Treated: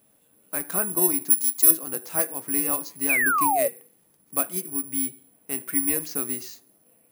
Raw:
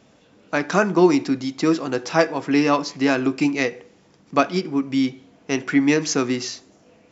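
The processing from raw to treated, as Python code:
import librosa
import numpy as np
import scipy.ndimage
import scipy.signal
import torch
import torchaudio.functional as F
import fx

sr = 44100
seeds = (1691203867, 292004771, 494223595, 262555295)

y = (np.kron(scipy.signal.resample_poly(x, 1, 4), np.eye(4)[0]) * 4)[:len(x)]
y = fx.bass_treble(y, sr, bass_db=-12, treble_db=11, at=(1.3, 1.71))
y = fx.spec_paint(y, sr, seeds[0], shape='fall', start_s=3.09, length_s=0.59, low_hz=530.0, high_hz=2600.0, level_db=-9.0)
y = y * librosa.db_to_amplitude(-13.0)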